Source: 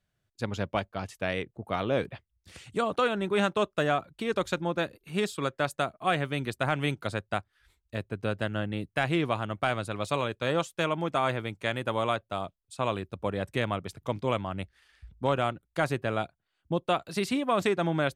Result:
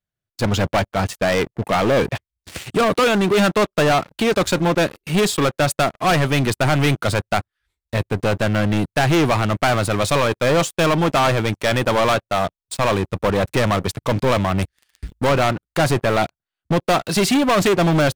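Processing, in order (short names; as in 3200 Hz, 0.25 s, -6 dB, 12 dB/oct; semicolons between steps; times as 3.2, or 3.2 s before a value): 14.62–15.27 high shelf 3600 Hz +10.5 dB; sample leveller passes 5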